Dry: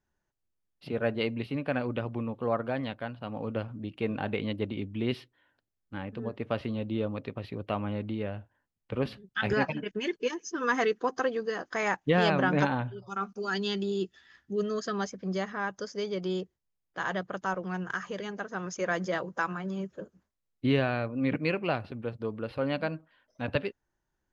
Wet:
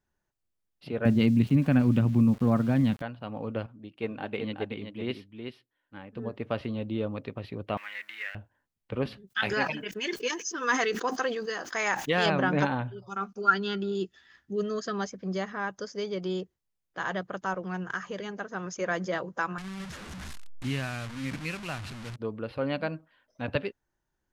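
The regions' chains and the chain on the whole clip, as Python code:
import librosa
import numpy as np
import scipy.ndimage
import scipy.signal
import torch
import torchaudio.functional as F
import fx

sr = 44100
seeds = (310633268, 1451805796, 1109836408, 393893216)

y = fx.chain(x, sr, fx.low_shelf_res(hz=320.0, db=11.5, q=1.5),
    fx.sample_gate(floor_db=-42.5), at=(1.05, 3.02))
y = fx.chain(y, sr, fx.low_shelf(hz=120.0, db=-9.0),
    fx.echo_single(ms=376, db=-4.5),
    fx.upward_expand(threshold_db=-41.0, expansion=1.5), at=(3.66, 6.16))
y = fx.chain(y, sr, fx.law_mismatch(coded='mu'),
    fx.highpass_res(hz=1900.0, q=6.3), at=(7.77, 8.35))
y = fx.chain(y, sr, fx.tilt_eq(slope=2.5),
    fx.sustainer(db_per_s=82.0), at=(9.27, 12.26))
y = fx.chain(y, sr, fx.bessel_lowpass(hz=3800.0, order=2),
    fx.small_body(hz=(1400.0,), ring_ms=25, db=16), at=(13.41, 13.95))
y = fx.chain(y, sr, fx.delta_mod(bps=64000, step_db=-30.0),
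    fx.lowpass(hz=3400.0, slope=6),
    fx.peak_eq(hz=470.0, db=-14.0, octaves=1.7), at=(19.58, 22.16))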